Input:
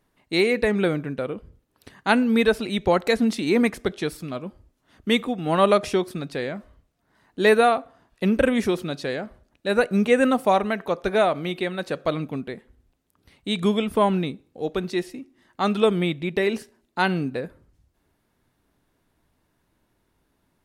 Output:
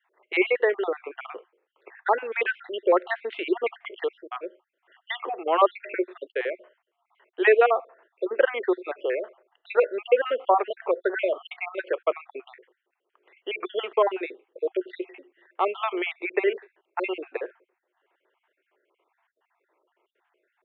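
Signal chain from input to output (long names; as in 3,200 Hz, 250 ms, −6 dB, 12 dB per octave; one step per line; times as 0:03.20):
time-frequency cells dropped at random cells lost 53%
Chebyshev band-pass filter 360–3,100 Hz, order 5
in parallel at −2 dB: downward compressor, threshold −32 dBFS, peak gain reduction 17.5 dB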